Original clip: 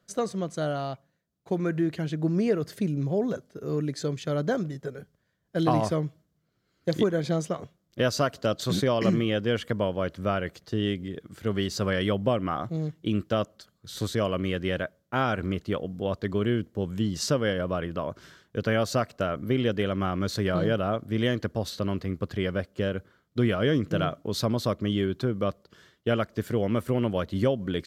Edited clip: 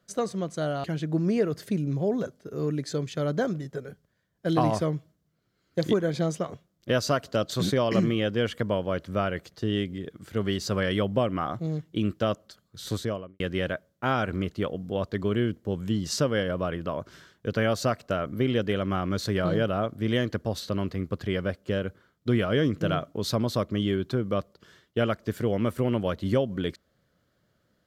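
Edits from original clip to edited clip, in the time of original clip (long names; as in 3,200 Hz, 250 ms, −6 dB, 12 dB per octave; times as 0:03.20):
0:00.84–0:01.94: remove
0:14.01–0:14.50: fade out and dull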